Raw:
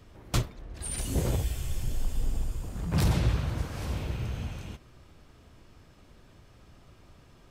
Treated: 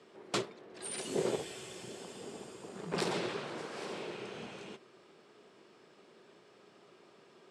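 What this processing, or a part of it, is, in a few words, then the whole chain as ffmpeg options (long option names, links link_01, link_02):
television speaker: -filter_complex "[0:a]highpass=frequency=210:width=0.5412,highpass=frequency=210:width=1.3066,equalizer=frequency=270:width_type=q:width=4:gain=-7,equalizer=frequency=400:width_type=q:width=4:gain=9,equalizer=frequency=6300:width_type=q:width=4:gain=-5,lowpass=frequency=8500:width=0.5412,lowpass=frequency=8500:width=1.3066,asettb=1/sr,asplit=3[link_01][link_02][link_03];[link_01]atrim=end=2.944[link_04];[link_02]atrim=start=2.94:end=4.35,asetpts=PTS-STARTPTS,afade=type=in:duration=0.004:curve=qsin,afade=type=out:start_time=1.406:duration=0.004:curve=qsin,highpass=frequency=190:poles=1[link_05];[link_03]atrim=start=4.346[link_06];[link_04][link_05]acrossfade=duration=0.004:curve1=hsin:curve2=qsin[link_07];[link_07][link_06]acrossfade=duration=0.004:curve1=qsin:curve2=hsin,volume=-1dB"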